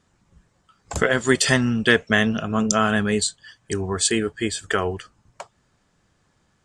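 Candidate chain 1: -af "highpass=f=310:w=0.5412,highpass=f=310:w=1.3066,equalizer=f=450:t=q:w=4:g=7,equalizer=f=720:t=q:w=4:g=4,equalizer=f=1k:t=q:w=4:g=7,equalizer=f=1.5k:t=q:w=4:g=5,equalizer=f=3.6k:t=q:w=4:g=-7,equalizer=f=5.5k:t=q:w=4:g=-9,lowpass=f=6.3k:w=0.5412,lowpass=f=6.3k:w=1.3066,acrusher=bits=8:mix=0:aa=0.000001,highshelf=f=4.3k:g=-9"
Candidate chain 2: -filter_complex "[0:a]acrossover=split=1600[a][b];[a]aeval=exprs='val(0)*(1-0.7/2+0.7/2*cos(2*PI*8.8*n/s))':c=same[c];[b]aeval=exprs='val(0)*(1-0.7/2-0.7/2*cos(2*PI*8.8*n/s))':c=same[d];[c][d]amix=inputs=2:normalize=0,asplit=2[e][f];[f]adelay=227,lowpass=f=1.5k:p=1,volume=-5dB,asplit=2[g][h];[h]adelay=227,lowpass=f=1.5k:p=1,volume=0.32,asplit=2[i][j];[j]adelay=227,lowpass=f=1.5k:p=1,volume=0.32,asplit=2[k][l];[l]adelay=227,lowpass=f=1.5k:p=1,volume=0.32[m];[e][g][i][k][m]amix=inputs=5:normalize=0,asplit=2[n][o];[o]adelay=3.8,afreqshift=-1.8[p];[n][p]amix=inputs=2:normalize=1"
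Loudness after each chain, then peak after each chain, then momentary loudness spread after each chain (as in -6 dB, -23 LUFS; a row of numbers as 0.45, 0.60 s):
-20.5, -26.5 LUFS; -1.0, -8.5 dBFS; 19, 14 LU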